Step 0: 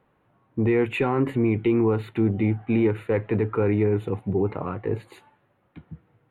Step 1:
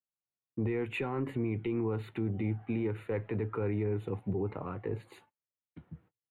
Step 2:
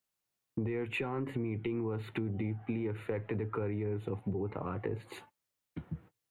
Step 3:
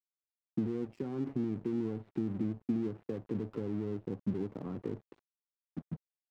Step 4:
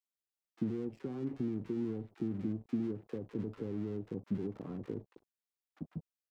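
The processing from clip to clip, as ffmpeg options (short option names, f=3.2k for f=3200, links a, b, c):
-filter_complex "[0:a]agate=range=-37dB:threshold=-52dB:ratio=16:detection=peak,acrossover=split=100[a][b];[b]alimiter=limit=-19dB:level=0:latency=1:release=181[c];[a][c]amix=inputs=2:normalize=0,volume=-6.5dB"
-af "acompressor=threshold=-43dB:ratio=4,volume=9dB"
-af "bandpass=f=230:t=q:w=1.7:csg=0,aeval=exprs='sgn(val(0))*max(abs(val(0))-0.00178,0)':c=same,volume=5.5dB"
-filter_complex "[0:a]acrossover=split=870[a][b];[a]adelay=40[c];[c][b]amix=inputs=2:normalize=0,volume=-2dB"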